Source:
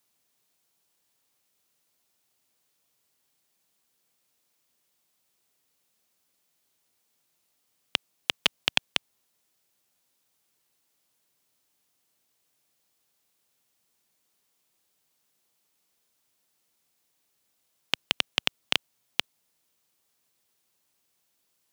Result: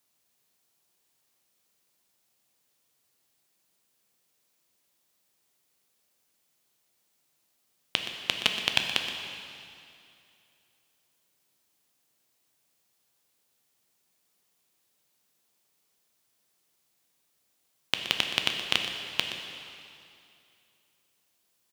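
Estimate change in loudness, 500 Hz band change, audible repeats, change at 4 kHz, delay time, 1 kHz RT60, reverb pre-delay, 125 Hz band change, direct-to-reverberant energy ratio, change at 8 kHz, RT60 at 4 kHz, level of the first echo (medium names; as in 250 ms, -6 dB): 0.0 dB, +0.5 dB, 1, +0.5 dB, 122 ms, 2.5 s, 5 ms, +1.0 dB, 3.0 dB, +1.0 dB, 2.4 s, -12.0 dB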